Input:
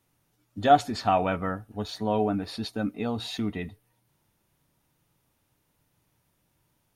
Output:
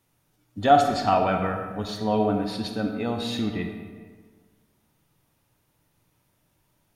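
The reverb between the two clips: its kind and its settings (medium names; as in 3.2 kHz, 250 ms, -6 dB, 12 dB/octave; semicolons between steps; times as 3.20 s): algorithmic reverb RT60 1.6 s, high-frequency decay 0.6×, pre-delay 5 ms, DRR 4 dB; trim +1.5 dB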